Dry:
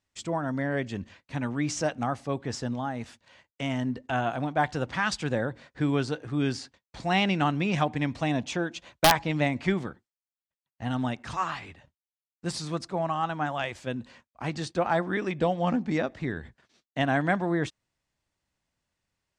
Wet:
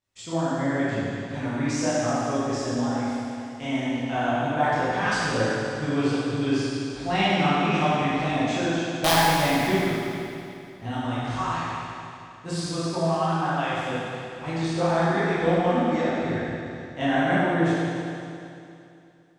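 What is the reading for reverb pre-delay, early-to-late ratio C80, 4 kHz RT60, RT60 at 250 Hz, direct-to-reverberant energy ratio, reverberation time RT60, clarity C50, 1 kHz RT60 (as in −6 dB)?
18 ms, −2.5 dB, 2.6 s, 2.7 s, −10.5 dB, 2.7 s, −4.5 dB, 2.7 s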